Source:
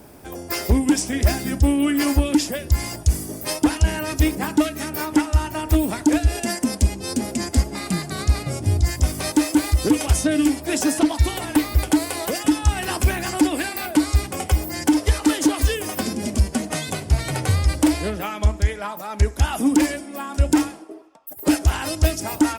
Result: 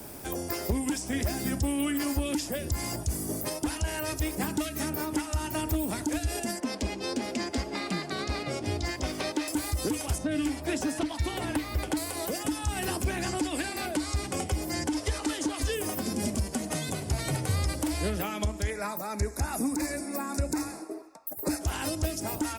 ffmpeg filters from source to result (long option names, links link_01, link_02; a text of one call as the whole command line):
ffmpeg -i in.wav -filter_complex "[0:a]asettb=1/sr,asplit=3[link_01][link_02][link_03];[link_01]atrim=end=3.824[link_04];[link_02]atrim=start=3.82:end=4.38,asetpts=PTS-STARTPTS,afade=type=in:duration=0.004:curve=qsin,afade=type=out:start_time=0.556:duration=0.004:curve=qsin,equalizer=frequency=210:width_type=o:width=1:gain=-14.5[link_05];[link_03]atrim=start=4.376[link_06];[link_04][link_05]acrossfade=duration=0.004:curve1=hsin:curve2=qsin[link_07];[link_07][link_06]acrossfade=duration=0.004:curve1=qsin:curve2=hsin,asettb=1/sr,asplit=3[link_08][link_09][link_10];[link_08]atrim=end=6.604[link_11];[link_09]atrim=start=6.6:end=9.48,asetpts=PTS-STARTPTS,afade=type=in:duration=0.004:curve=qsin,afade=type=out:start_time=2.876:duration=0.004:curve=qsin,acrossover=split=240 4800:gain=0.178 1 0.0891[link_12][link_13][link_14];[link_12][link_13][link_14]amix=inputs=3:normalize=0[link_15];[link_10]atrim=start=9.476[link_16];[link_11][link_15]acrossfade=duration=0.004:curve1=hsin:curve2=qsin[link_17];[link_17][link_16]acrossfade=duration=0.004:curve1=qsin:curve2=hsin,asettb=1/sr,asplit=3[link_18][link_19][link_20];[link_18]atrim=end=10.184[link_21];[link_19]atrim=start=10.18:end=11.97,asetpts=PTS-STARTPTS,afade=type=in:duration=0.004:curve=qsin,afade=type=out:start_time=1.786:duration=0.004:curve=qsin,lowpass=frequency=1700:poles=1[link_22];[link_20]atrim=start=11.966[link_23];[link_21][link_22]acrossfade=duration=0.004:curve1=hsin:curve2=qsin[link_24];[link_24][link_23]acrossfade=duration=0.004:curve1=qsin:curve2=hsin,asettb=1/sr,asplit=3[link_25][link_26][link_27];[link_25]atrim=end=13.044[link_28];[link_26]atrim=start=13.04:end=15.73,asetpts=PTS-STARTPTS,afade=type=in:duration=0.004:curve=qsin,afade=type=out:start_time=2.686:duration=0.004:curve=qsin,lowpass=8600[link_29];[link_27]atrim=start=15.726[link_30];[link_28][link_29]acrossfade=duration=0.004:curve1=hsin:curve2=qsin[link_31];[link_31][link_30]acrossfade=duration=0.004:curve1=qsin:curve2=hsin,asettb=1/sr,asplit=3[link_32][link_33][link_34];[link_32]atrim=end=18.704[link_35];[link_33]atrim=start=18.7:end=21.61,asetpts=PTS-STARTPTS,afade=type=in:duration=0.004:curve=qsin,afade=type=out:start_time=2.906:duration=0.004:curve=qsin,asuperstop=centerf=3100:order=4:qfactor=2.3[link_36];[link_34]atrim=start=21.606[link_37];[link_35][link_36]acrossfade=duration=0.004:curve1=hsin:curve2=qsin[link_38];[link_38][link_37]acrossfade=duration=0.004:curve1=qsin:curve2=hsin,highshelf=frequency=3900:gain=8,alimiter=limit=-12.5dB:level=0:latency=1:release=244,acrossover=split=140|560|1500[link_39][link_40][link_41][link_42];[link_39]acompressor=threshold=-29dB:ratio=4[link_43];[link_40]acompressor=threshold=-31dB:ratio=4[link_44];[link_41]acompressor=threshold=-40dB:ratio=4[link_45];[link_42]acompressor=threshold=-36dB:ratio=4[link_46];[link_43][link_44][link_45][link_46]amix=inputs=4:normalize=0" out.wav